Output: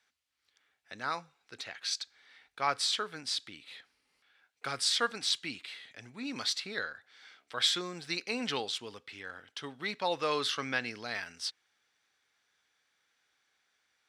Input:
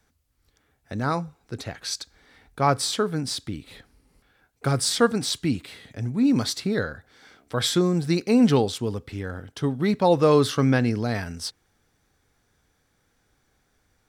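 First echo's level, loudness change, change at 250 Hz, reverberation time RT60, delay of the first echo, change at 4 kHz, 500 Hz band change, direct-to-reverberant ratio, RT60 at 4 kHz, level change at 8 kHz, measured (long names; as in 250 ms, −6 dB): no echo audible, −9.5 dB, −20.5 dB, no reverb audible, no echo audible, −1.5 dB, −15.5 dB, no reverb audible, no reverb audible, −7.5 dB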